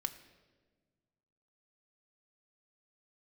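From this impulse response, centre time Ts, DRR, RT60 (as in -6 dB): 9 ms, 5.5 dB, 1.4 s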